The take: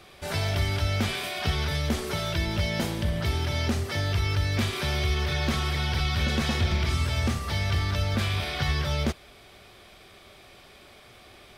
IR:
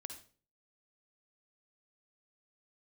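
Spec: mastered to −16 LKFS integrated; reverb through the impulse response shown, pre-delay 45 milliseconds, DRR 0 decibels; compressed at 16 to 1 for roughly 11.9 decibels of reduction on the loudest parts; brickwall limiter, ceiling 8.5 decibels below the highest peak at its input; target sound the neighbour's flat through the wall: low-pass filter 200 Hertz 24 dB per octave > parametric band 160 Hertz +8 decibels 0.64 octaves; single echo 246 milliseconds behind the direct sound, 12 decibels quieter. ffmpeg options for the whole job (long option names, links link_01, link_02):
-filter_complex "[0:a]acompressor=threshold=-33dB:ratio=16,alimiter=level_in=8.5dB:limit=-24dB:level=0:latency=1,volume=-8.5dB,aecho=1:1:246:0.251,asplit=2[link_01][link_02];[1:a]atrim=start_sample=2205,adelay=45[link_03];[link_02][link_03]afir=irnorm=-1:irlink=0,volume=4dB[link_04];[link_01][link_04]amix=inputs=2:normalize=0,lowpass=frequency=200:width=0.5412,lowpass=frequency=200:width=1.3066,equalizer=frequency=160:width_type=o:width=0.64:gain=8,volume=23.5dB"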